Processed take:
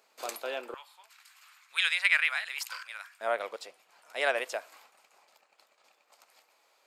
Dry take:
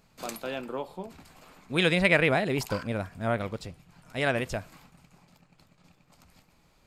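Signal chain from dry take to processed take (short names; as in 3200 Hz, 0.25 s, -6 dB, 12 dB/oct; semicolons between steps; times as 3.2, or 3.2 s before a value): HPF 400 Hz 24 dB/oct, from 0.74 s 1300 Hz, from 3.21 s 480 Hz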